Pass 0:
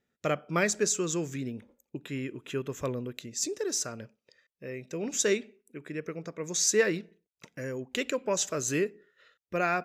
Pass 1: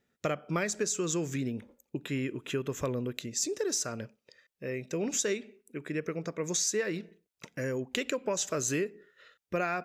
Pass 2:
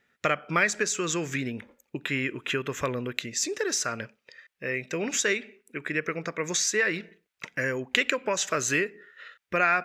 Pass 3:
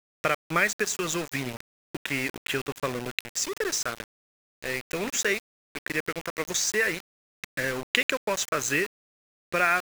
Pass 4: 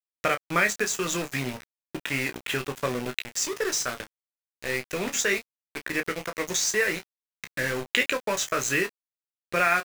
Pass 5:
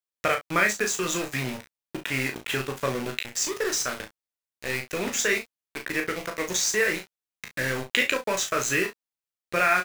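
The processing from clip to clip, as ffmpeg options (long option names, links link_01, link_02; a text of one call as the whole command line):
ffmpeg -i in.wav -af "acompressor=threshold=-31dB:ratio=6,volume=3.5dB" out.wav
ffmpeg -i in.wav -af "equalizer=frequency=1900:width_type=o:width=2.1:gain=13" out.wav
ffmpeg -i in.wav -af "aeval=exprs='val(0)*gte(abs(val(0)),0.0316)':channel_layout=same" out.wav
ffmpeg -i in.wav -af "aecho=1:1:16|29:0.376|0.335" out.wav
ffmpeg -i in.wav -filter_complex "[0:a]asplit=2[link_01][link_02];[link_02]adelay=38,volume=-7dB[link_03];[link_01][link_03]amix=inputs=2:normalize=0" out.wav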